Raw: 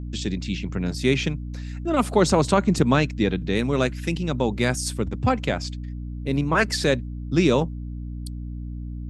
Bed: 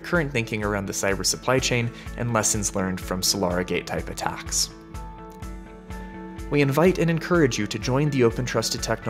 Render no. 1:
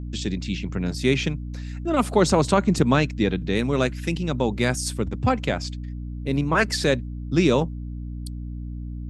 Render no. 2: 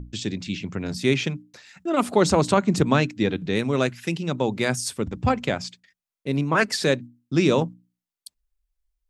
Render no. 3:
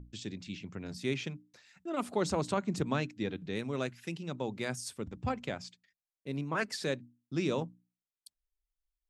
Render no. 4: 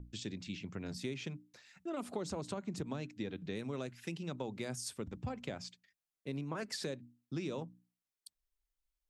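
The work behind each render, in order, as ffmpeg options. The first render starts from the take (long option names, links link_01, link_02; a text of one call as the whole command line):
ffmpeg -i in.wav -af anull out.wav
ffmpeg -i in.wav -af "bandreject=frequency=60:width_type=h:width=6,bandreject=frequency=120:width_type=h:width=6,bandreject=frequency=180:width_type=h:width=6,bandreject=frequency=240:width_type=h:width=6,bandreject=frequency=300:width_type=h:width=6" out.wav
ffmpeg -i in.wav -af "volume=-12.5dB" out.wav
ffmpeg -i in.wav -filter_complex "[0:a]acrossover=split=760|4100[link_01][link_02][link_03];[link_02]alimiter=level_in=10dB:limit=-24dB:level=0:latency=1:release=52,volume=-10dB[link_04];[link_01][link_04][link_03]amix=inputs=3:normalize=0,acompressor=threshold=-36dB:ratio=6" out.wav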